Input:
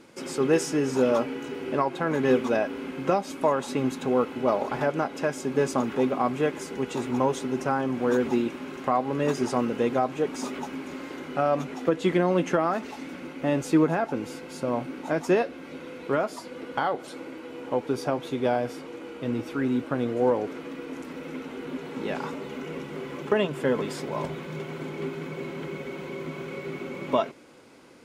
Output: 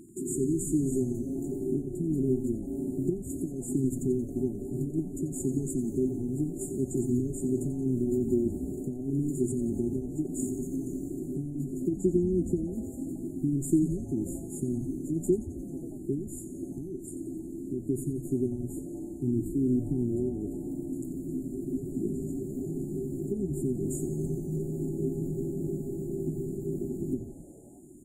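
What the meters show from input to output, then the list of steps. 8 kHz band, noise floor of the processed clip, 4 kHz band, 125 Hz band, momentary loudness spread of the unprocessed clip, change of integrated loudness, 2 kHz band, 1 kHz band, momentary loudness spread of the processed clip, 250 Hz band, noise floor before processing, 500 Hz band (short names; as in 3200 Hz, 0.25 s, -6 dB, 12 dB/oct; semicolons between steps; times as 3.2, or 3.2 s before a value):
+1.5 dB, -41 dBFS, under -40 dB, +3.0 dB, 12 LU, -4.0 dB, under -40 dB, under -30 dB, 9 LU, -0.5 dB, -42 dBFS, -7.5 dB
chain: compressor 4:1, threshold -26 dBFS, peak gain reduction 9 dB; brick-wall FIR band-stop 400–6800 Hz; bell 240 Hz -4 dB 0.84 oct; frequency-shifting echo 89 ms, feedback 64%, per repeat -140 Hz, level -13 dB; gain +6.5 dB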